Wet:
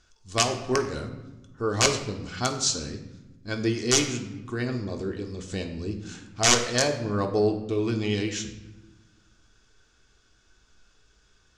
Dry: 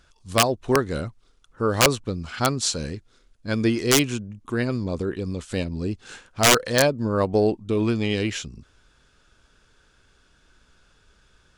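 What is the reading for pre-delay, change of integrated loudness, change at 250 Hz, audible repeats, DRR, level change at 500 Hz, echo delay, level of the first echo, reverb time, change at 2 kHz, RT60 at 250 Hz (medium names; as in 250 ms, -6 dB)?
3 ms, -3.5 dB, -4.5 dB, no echo, 3.5 dB, -4.0 dB, no echo, no echo, 1.1 s, -4.0 dB, 1.7 s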